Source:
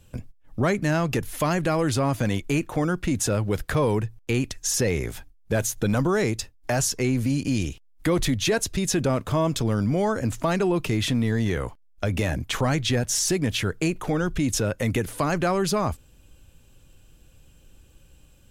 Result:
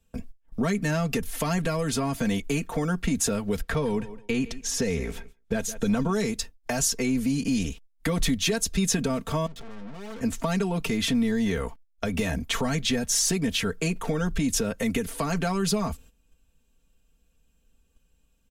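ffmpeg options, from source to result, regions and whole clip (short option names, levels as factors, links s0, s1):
-filter_complex "[0:a]asettb=1/sr,asplit=3[s0][s1][s2];[s0]atrim=end=3.614[s3];[s1]atrim=start=3.61:end=6.13,asetpts=PTS-STARTPTS,afade=t=in:d=0.004:c=qsin,afade=t=out:st=2.516:d=0.004:c=qsin,highshelf=f=7000:g=-11,aecho=1:1:164|328:0.119|0.0238,atrim=end_sample=111132[s4];[s2]atrim=start=6.126[s5];[s3][s4]acrossfade=d=0.004:c1=hsin:c2=qsin[s6];[s6][s5]acrossfade=d=0.004:c1=qsin:c2=hsin,asettb=1/sr,asplit=3[s7][s8][s9];[s7]atrim=end=9.464[s10];[s8]atrim=start=9.46:end=10.21,asetpts=PTS-STARTPTS,afade=t=in:d=0.004:c=qsin,afade=t=out:st=0.746:d=0.004:c=qsin,lowpass=3100,aeval=exprs='(tanh(100*val(0)+0.55)-tanh(0.55))/100':c=same[s11];[s9]atrim=start=10.206[s12];[s10][s11]acrossfade=d=0.004:c1=hsin:c2=qsin[s13];[s13][s12]acrossfade=d=0.004:c1=qsin:c2=hsin,agate=range=0.2:threshold=0.00562:ratio=16:detection=peak,aecho=1:1:4.4:0.8,acrossover=split=220|3000[s14][s15][s16];[s15]acompressor=threshold=0.0562:ratio=6[s17];[s14][s17][s16]amix=inputs=3:normalize=0,volume=0.841"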